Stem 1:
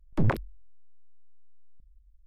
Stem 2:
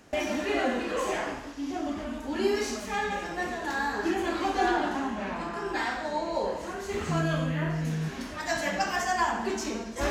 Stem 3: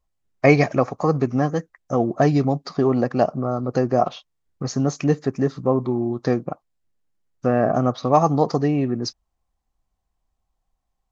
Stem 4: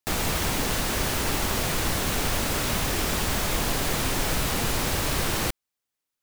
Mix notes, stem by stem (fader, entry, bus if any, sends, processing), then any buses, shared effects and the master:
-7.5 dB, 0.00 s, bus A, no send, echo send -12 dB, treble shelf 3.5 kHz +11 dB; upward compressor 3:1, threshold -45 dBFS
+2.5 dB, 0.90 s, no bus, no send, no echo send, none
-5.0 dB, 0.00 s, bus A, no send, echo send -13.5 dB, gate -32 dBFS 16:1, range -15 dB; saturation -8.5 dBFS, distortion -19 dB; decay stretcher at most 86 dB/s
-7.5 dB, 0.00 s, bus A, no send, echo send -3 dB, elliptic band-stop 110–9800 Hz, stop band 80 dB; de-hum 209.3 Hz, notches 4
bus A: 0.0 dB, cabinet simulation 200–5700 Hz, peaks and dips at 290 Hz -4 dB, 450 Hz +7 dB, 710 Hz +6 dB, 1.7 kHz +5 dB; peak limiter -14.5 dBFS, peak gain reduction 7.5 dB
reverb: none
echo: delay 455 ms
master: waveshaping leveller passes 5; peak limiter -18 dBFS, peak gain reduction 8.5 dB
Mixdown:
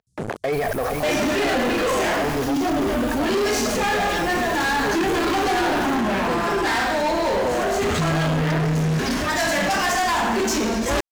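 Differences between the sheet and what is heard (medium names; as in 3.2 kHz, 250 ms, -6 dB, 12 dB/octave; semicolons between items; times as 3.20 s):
stem 1: missing treble shelf 3.5 kHz +11 dB; stem 2 +2.5 dB -> +13.5 dB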